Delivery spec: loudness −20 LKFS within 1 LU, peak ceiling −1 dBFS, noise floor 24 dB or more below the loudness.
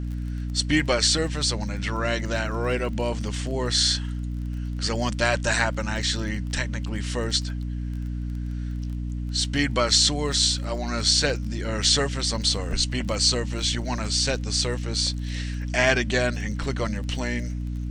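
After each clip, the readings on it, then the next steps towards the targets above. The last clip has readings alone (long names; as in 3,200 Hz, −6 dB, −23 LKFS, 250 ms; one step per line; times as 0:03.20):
crackle rate 22 per second; mains hum 60 Hz; hum harmonics up to 300 Hz; level of the hum −27 dBFS; integrated loudness −24.5 LKFS; sample peak −6.0 dBFS; target loudness −20.0 LKFS
→ click removal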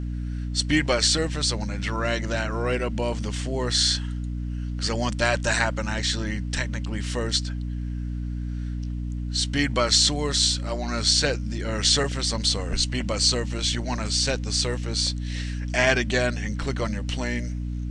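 crackle rate 0.056 per second; mains hum 60 Hz; hum harmonics up to 300 Hz; level of the hum −27 dBFS
→ hum removal 60 Hz, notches 5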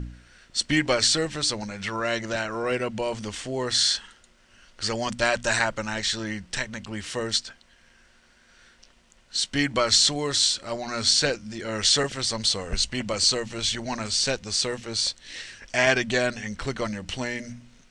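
mains hum none found; integrated loudness −24.5 LKFS; sample peak −6.5 dBFS; target loudness −20.0 LKFS
→ level +4.5 dB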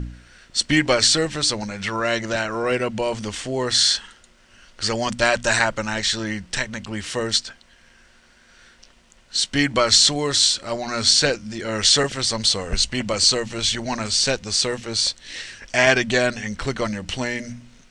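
integrated loudness −20.0 LKFS; sample peak −2.0 dBFS; background noise floor −54 dBFS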